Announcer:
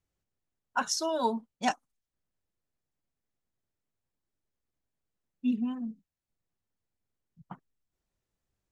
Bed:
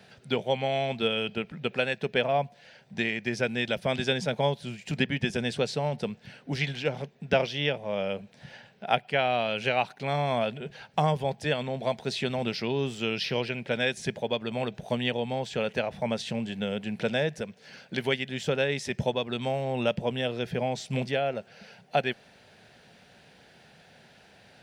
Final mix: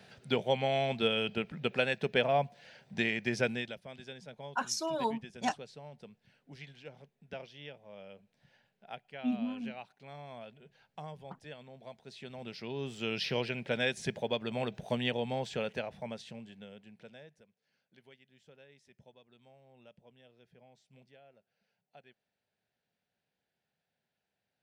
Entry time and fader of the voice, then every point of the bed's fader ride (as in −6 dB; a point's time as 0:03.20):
3.80 s, −4.0 dB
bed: 0:03.50 −2.5 dB
0:03.83 −20 dB
0:12.04 −20 dB
0:13.20 −4 dB
0:15.46 −4 dB
0:17.66 −31.5 dB